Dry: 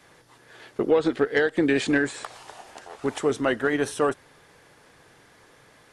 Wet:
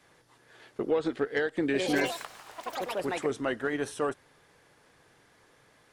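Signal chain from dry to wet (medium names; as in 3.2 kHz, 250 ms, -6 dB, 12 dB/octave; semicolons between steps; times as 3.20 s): 1.62–3.65 s: ever faster or slower copies 121 ms, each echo +5 st, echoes 3; trim -7 dB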